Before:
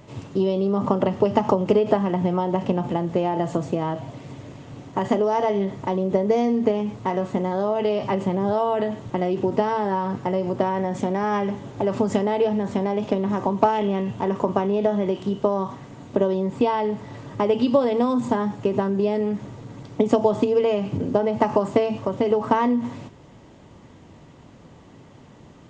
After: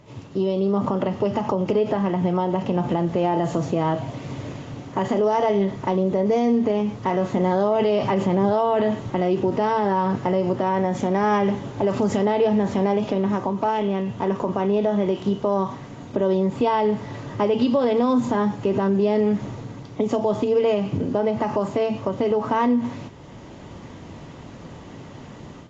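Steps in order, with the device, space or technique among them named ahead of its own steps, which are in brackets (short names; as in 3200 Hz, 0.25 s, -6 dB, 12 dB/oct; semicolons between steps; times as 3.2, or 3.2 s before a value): low-bitrate web radio (AGC gain up to 11 dB; limiter -8.5 dBFS, peak gain reduction 7.5 dB; gain -3 dB; AAC 32 kbps 16000 Hz)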